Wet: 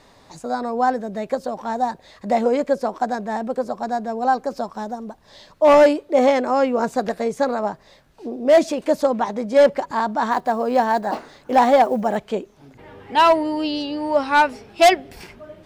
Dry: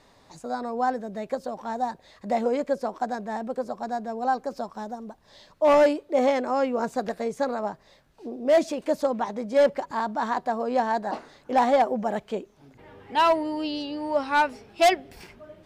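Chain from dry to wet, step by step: 10.31–12.18 block floating point 7-bit; gain +6 dB

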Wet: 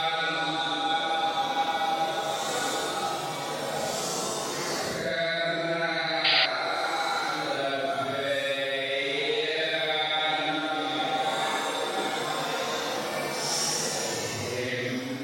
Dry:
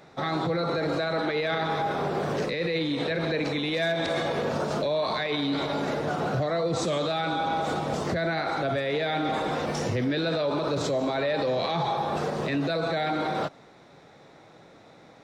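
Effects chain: RIAA curve recording; Paulstretch 5.3×, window 0.10 s, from 7.2; painted sound noise, 6.24–6.46, 1800–4900 Hz -23 dBFS

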